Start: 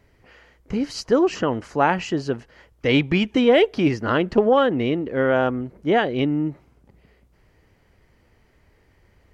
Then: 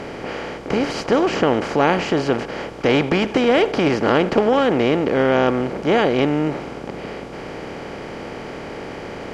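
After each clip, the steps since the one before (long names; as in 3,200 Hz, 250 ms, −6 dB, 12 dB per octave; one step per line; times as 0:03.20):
compressor on every frequency bin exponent 0.4
level −3.5 dB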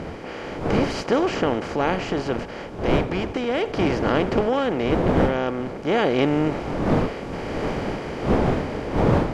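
wind on the microphone 460 Hz −21 dBFS
automatic gain control gain up to 12 dB
level −6.5 dB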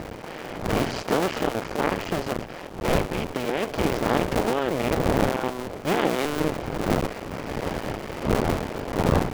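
sub-harmonics by changed cycles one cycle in 2, muted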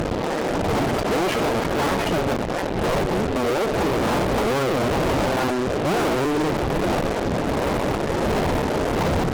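echo ahead of the sound 61 ms −20 dB
gate on every frequency bin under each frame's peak −10 dB strong
fuzz pedal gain 44 dB, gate −47 dBFS
level −6 dB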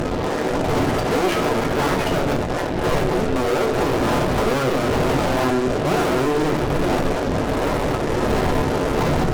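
rectangular room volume 48 cubic metres, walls mixed, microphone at 0.38 metres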